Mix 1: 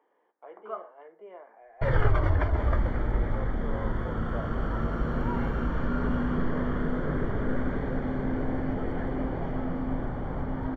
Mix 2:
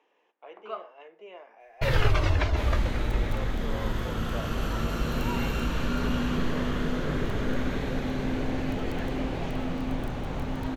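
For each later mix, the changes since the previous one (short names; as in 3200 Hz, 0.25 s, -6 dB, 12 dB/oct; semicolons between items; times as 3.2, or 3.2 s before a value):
master: remove polynomial smoothing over 41 samples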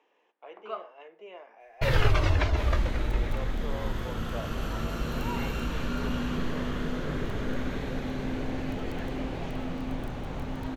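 second sound -3.0 dB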